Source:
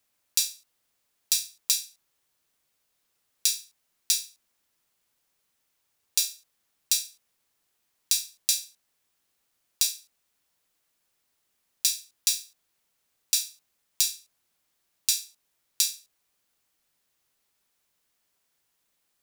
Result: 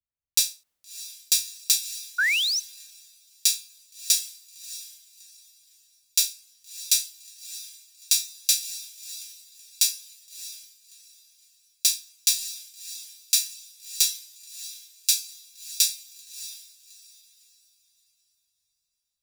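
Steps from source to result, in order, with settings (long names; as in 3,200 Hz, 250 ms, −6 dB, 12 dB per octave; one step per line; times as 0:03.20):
feedback delay with all-pass diffusion 635 ms, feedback 51%, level −6.5 dB
sound drawn into the spectrogram rise, 0:02.18–0:02.60, 1,400–6,300 Hz −25 dBFS
multiband upward and downward expander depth 70%
level −1.5 dB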